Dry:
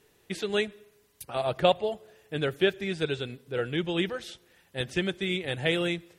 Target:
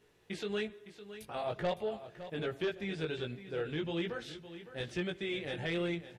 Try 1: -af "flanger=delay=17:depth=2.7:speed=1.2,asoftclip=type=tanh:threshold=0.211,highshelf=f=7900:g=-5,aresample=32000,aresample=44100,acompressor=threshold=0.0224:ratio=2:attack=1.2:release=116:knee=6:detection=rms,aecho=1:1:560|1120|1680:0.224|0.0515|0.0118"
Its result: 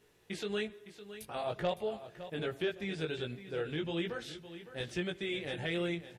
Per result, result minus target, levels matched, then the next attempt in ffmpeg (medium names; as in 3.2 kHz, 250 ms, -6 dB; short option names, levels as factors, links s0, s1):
saturation: distortion -9 dB; 8 kHz band +3.0 dB
-af "flanger=delay=17:depth=2.7:speed=1.2,asoftclip=type=tanh:threshold=0.0891,highshelf=f=7900:g=-5,aresample=32000,aresample=44100,acompressor=threshold=0.0224:ratio=2:attack=1.2:release=116:knee=6:detection=rms,aecho=1:1:560|1120|1680:0.224|0.0515|0.0118"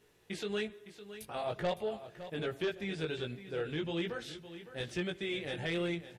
8 kHz band +3.5 dB
-af "flanger=delay=17:depth=2.7:speed=1.2,asoftclip=type=tanh:threshold=0.0891,highshelf=f=7900:g=-13,aresample=32000,aresample=44100,acompressor=threshold=0.0224:ratio=2:attack=1.2:release=116:knee=6:detection=rms,aecho=1:1:560|1120|1680:0.224|0.0515|0.0118"